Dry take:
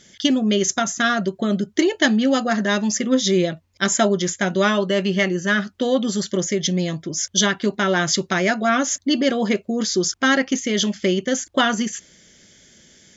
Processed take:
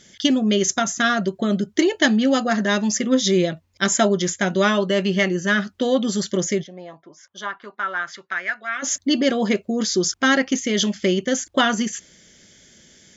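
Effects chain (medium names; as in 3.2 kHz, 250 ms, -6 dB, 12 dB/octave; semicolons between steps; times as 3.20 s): 6.62–8.82 s: band-pass filter 750 Hz -> 2 kHz, Q 2.8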